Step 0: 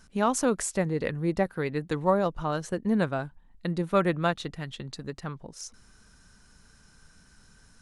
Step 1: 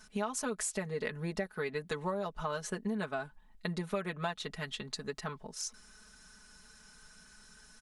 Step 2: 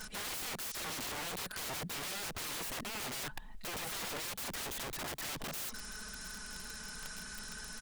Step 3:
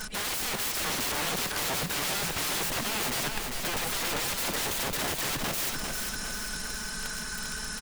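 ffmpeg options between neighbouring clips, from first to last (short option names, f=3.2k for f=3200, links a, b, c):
-af "lowshelf=f=440:g=-9.5,aecho=1:1:4.7:0.94,acompressor=threshold=-32dB:ratio=6"
-af "alimiter=level_in=9.5dB:limit=-24dB:level=0:latency=1:release=18,volume=-9.5dB,aeval=exprs='(mod(237*val(0)+1,2)-1)/237':c=same,volume=12dB"
-af "aecho=1:1:398|796|1194|1592|1990|2388|2786:0.596|0.304|0.155|0.079|0.0403|0.0206|0.0105,volume=8.5dB"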